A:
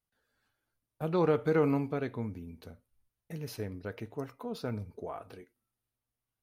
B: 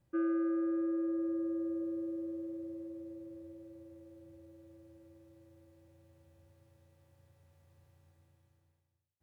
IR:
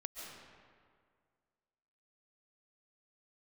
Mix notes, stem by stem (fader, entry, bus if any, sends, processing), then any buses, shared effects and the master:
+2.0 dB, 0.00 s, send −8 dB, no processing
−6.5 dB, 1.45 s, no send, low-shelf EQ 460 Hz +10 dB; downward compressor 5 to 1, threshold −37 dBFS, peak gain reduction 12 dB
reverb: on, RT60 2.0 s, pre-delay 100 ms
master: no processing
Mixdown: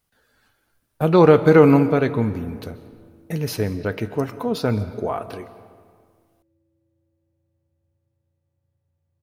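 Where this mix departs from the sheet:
stem A +2.0 dB → +13.0 dB
stem B −6.5 dB → −16.5 dB

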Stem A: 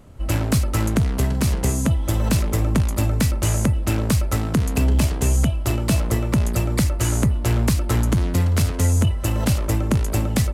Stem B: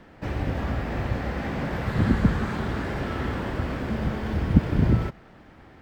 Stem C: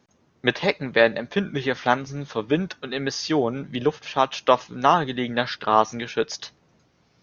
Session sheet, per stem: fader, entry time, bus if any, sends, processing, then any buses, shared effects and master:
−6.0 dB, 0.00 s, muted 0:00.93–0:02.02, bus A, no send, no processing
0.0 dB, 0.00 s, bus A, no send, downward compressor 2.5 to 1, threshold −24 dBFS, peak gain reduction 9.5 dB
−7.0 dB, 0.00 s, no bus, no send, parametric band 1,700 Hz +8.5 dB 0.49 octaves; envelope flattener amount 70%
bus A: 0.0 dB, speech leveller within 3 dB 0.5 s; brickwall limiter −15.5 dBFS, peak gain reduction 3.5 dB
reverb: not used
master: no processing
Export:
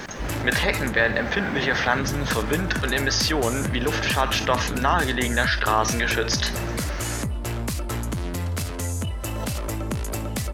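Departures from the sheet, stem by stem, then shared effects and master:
stem A −6.0 dB → +1.5 dB
stem B: missing downward compressor 2.5 to 1, threshold −24 dBFS, peak gain reduction 9.5 dB
master: extra low-shelf EQ 310 Hz −7 dB

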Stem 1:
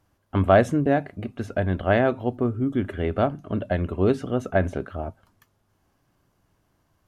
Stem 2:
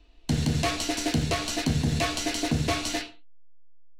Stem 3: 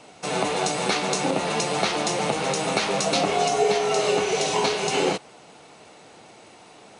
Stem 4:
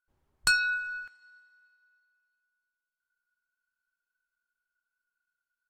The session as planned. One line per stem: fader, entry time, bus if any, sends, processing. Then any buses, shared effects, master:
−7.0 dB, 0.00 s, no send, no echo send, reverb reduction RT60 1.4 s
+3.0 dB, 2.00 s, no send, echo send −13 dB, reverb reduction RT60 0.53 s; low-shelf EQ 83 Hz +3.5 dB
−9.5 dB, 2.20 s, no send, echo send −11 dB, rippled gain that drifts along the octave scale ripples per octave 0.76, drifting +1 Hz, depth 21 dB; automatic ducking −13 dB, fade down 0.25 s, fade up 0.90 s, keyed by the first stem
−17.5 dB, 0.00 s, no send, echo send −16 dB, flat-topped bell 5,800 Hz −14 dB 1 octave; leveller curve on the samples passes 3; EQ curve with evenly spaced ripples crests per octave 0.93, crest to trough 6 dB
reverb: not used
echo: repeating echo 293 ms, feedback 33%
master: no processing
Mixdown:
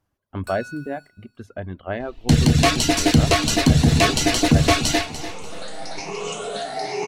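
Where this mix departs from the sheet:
stem 2 +3.0 dB → +10.0 dB
stem 3: entry 2.20 s → 2.85 s

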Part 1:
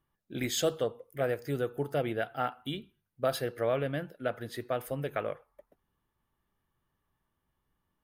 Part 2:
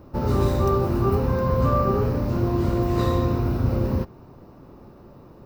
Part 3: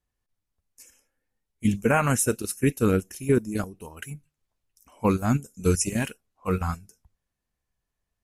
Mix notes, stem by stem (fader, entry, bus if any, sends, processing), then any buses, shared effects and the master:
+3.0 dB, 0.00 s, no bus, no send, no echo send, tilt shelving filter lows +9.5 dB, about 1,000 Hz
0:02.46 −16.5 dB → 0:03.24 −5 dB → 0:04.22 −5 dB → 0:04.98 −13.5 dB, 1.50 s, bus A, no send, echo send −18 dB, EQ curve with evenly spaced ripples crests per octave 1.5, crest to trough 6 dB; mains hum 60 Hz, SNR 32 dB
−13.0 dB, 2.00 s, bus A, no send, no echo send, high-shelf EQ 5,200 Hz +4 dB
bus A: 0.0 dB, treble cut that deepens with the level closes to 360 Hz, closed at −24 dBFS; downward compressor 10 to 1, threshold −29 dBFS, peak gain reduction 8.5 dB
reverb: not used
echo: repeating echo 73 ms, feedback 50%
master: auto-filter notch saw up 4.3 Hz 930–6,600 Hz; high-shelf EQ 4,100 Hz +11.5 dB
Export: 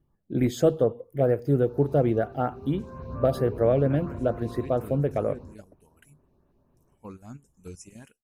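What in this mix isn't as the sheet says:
stem 2 −16.5 dB → −25.5 dB
stem 3 −13.0 dB → −20.0 dB
master: missing high-shelf EQ 4,100 Hz +11.5 dB

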